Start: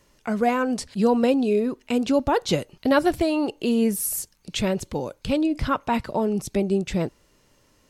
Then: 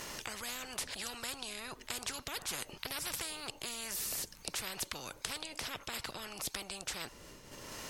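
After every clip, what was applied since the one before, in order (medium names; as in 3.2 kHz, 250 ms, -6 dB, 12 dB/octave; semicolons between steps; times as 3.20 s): expander -52 dBFS; upward compressor, threshold -29 dBFS; spectrum-flattening compressor 10:1; trim -7 dB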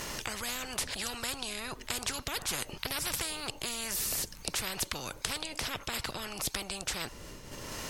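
bass shelf 140 Hz +6 dB; trim +5 dB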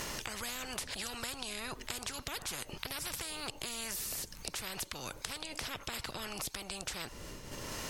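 compression, threshold -36 dBFS, peak gain reduction 9 dB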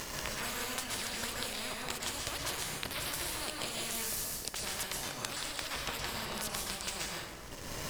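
crossover distortion -45.5 dBFS; plate-style reverb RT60 1.2 s, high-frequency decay 0.65×, pre-delay 110 ms, DRR -3 dB; trim +2.5 dB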